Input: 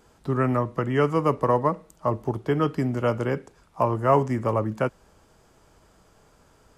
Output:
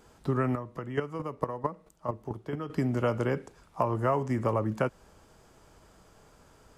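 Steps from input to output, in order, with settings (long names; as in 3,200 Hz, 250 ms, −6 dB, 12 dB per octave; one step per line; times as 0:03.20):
downward compressor 6 to 1, threshold −23 dBFS, peak gain reduction 9.5 dB
0:00.53–0:02.70: square-wave tremolo 4.5 Hz, depth 65%, duty 10%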